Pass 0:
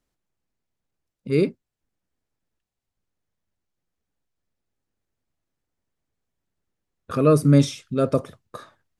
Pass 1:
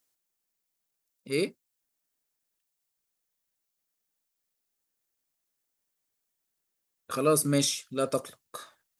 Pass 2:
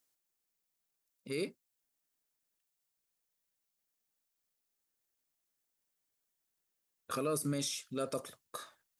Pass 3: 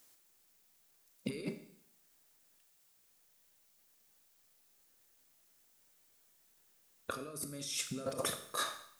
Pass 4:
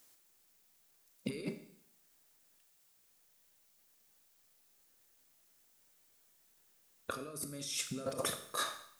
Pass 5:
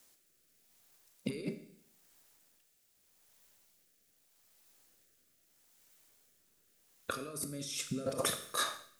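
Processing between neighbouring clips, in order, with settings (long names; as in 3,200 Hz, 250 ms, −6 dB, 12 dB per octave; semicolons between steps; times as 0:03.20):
RIAA equalisation recording; level −4 dB
in parallel at −0.5 dB: downward compressor, threshold −31 dBFS, peak gain reduction 11.5 dB; on the sum: brickwall limiter −18 dBFS, peak gain reduction 7 dB; level −8.5 dB
compressor whose output falls as the input rises −47 dBFS, ratio −1; four-comb reverb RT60 0.68 s, combs from 27 ms, DRR 8.5 dB; level +6 dB
no processing that can be heard
rotating-speaker cabinet horn 0.8 Hz; level +4.5 dB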